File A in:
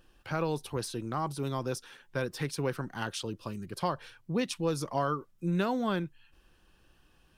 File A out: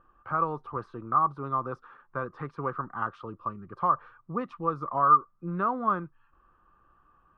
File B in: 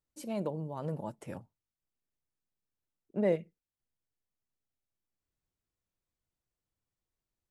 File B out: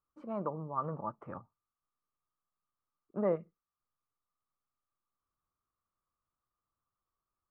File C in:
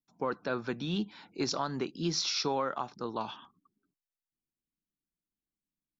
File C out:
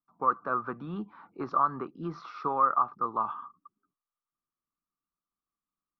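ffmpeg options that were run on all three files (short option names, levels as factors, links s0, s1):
-af "lowpass=f=1200:t=q:w=13,volume=0.631"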